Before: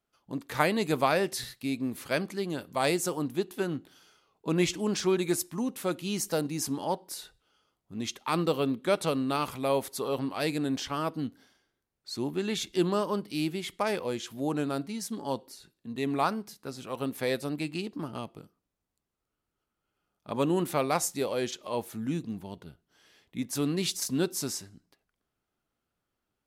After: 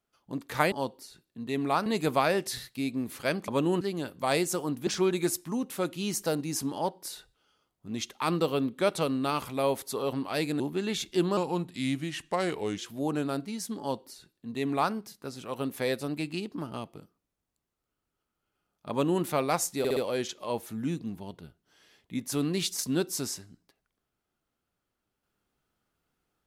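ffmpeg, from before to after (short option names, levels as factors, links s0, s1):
-filter_complex "[0:a]asplit=12[s0][s1][s2][s3][s4][s5][s6][s7][s8][s9][s10][s11];[s0]atrim=end=0.722[s12];[s1]atrim=start=15.208:end=16.352[s13];[s2]atrim=start=0.718:end=2.342[s14];[s3]atrim=start=20.318:end=20.652[s15];[s4]atrim=start=2.338:end=3.402[s16];[s5]atrim=start=4.928:end=10.662[s17];[s6]atrim=start=12.208:end=12.984[s18];[s7]atrim=start=12.98:end=14.19,asetpts=PTS-STARTPTS,asetrate=37926,aresample=44100[s19];[s8]atrim=start=14.186:end=21.262[s20];[s9]atrim=start=21.198:end=21.262[s21];[s10]atrim=start=21.198:end=21.262[s22];[s11]atrim=start=21.198[s23];[s12][s13]acrossfade=d=0.004:c1=hsin:c2=hsin[s24];[s24][s14]acrossfade=d=0.004:c1=hsin:c2=hsin[s25];[s25][s15]acrossfade=d=0.004:c1=hsin:c2=hsin[s26];[s26][s16]acrossfade=d=0.004:c1=hsin:c2=hsin[s27];[s27][s17]acrossfade=d=0.004:c1=hsin:c2=hsin[s28];[s28][s18]acrossfade=d=0.004:c1=hsin:c2=hsin[s29];[s29][s19]acrossfade=d=0.004:c1=hsin:c2=hsin[s30];[s30][s20]acrossfade=d=0.004:c1=hsin:c2=hsin[s31];[s31][s21]acrossfade=d=0.004:c1=hsin:c2=hsin[s32];[s32][s22]acrossfade=d=0.004:c1=hsin:c2=hsin[s33];[s33][s23]acrossfade=d=0.004:c1=hsin:c2=hsin"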